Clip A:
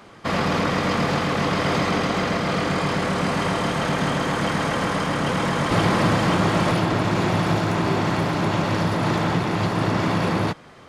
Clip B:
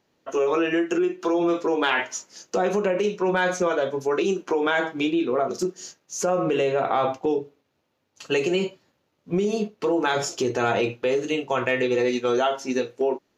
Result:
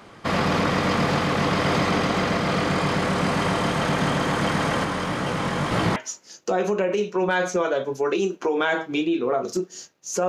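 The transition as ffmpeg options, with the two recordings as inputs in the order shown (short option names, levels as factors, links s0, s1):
-filter_complex "[0:a]asplit=3[s0][s1][s2];[s0]afade=t=out:st=4.83:d=0.02[s3];[s1]flanger=delay=15.5:depth=7.6:speed=1.9,afade=t=in:st=4.83:d=0.02,afade=t=out:st=5.96:d=0.02[s4];[s2]afade=t=in:st=5.96:d=0.02[s5];[s3][s4][s5]amix=inputs=3:normalize=0,apad=whole_dur=10.28,atrim=end=10.28,atrim=end=5.962[s6];[1:a]atrim=start=2.018:end=6.34[s7];[s6][s7]acrossfade=d=0.004:c1=hsin:c2=hsin"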